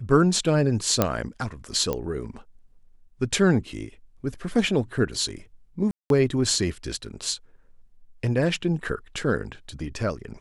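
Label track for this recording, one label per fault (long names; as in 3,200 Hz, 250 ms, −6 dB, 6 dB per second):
1.020000	1.020000	click −5 dBFS
1.930000	1.930000	click −14 dBFS
5.910000	6.100000	drop-out 192 ms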